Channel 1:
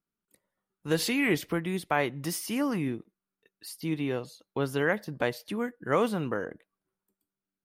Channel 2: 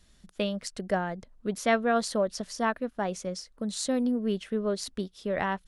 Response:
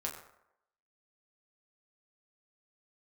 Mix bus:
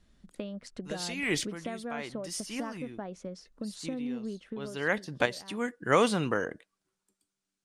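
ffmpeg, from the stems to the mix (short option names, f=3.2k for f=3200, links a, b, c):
-filter_complex "[0:a]lowpass=f=8.2k:w=0.5412,lowpass=f=8.2k:w=1.3066,highshelf=f=2.3k:g=9.5,volume=1dB[a];[1:a]aemphasis=mode=reproduction:type=75fm,acompressor=threshold=-33dB:ratio=6,equalizer=f=260:w=1.5:g=4.5,volume=-4dB,afade=t=out:st=4.38:d=0.6:silence=0.251189,asplit=2[b][c];[c]apad=whole_len=337111[d];[a][d]sidechaincompress=threshold=-56dB:ratio=4:attack=39:release=233[e];[e][b]amix=inputs=2:normalize=0,highshelf=f=9.9k:g=9"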